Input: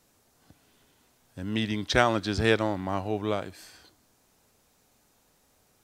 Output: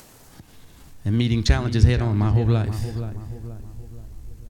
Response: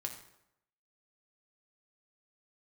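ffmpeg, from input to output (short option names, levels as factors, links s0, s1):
-filter_complex "[0:a]asubboost=boost=9.5:cutoff=57,acompressor=threshold=0.0316:ratio=4,asplit=2[s0][s1];[1:a]atrim=start_sample=2205[s2];[s1][s2]afir=irnorm=-1:irlink=0,volume=0.398[s3];[s0][s3]amix=inputs=2:normalize=0,asubboost=boost=8.5:cutoff=220,asetrate=37084,aresample=44100,atempo=1.18921,acompressor=mode=upward:threshold=0.00708:ratio=2.5,asetrate=57330,aresample=44100,asplit=2[s4][s5];[s5]adelay=477,lowpass=f=1500:p=1,volume=0.316,asplit=2[s6][s7];[s7]adelay=477,lowpass=f=1500:p=1,volume=0.46,asplit=2[s8][s9];[s9]adelay=477,lowpass=f=1500:p=1,volume=0.46,asplit=2[s10][s11];[s11]adelay=477,lowpass=f=1500:p=1,volume=0.46,asplit=2[s12][s13];[s13]adelay=477,lowpass=f=1500:p=1,volume=0.46[s14];[s4][s6][s8][s10][s12][s14]amix=inputs=6:normalize=0,volume=1.68"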